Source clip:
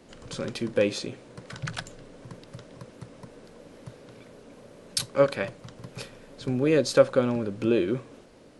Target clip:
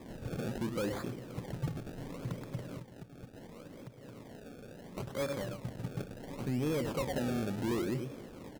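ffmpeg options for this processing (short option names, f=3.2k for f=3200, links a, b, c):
-filter_complex "[0:a]aecho=1:1:104:0.224,asoftclip=type=tanh:threshold=-23.5dB,alimiter=level_in=9.5dB:limit=-24dB:level=0:latency=1:release=287,volume=-9.5dB,acrusher=samples=30:mix=1:aa=0.000001:lfo=1:lforange=30:lforate=0.71,equalizer=f=140:w=0.36:g=7.5,asettb=1/sr,asplit=3[a][b][c];[a]atrim=end=2.784[d];[b]atrim=start=2.78:end=4.98,asetpts=PTS-STARTPTS,afade=t=in:d=0.004:c=qsin,afade=t=out:st=2.196:d=0.004:c=qsin,acompressor=threshold=-46dB:ratio=6[e];[c]atrim=start=4.976[f];[d][e]acrossfade=d=0.004:c1=hsin:c2=qsin[g];[g][f]acrossfade=d=0.004:c1=qsin:c2=hsin"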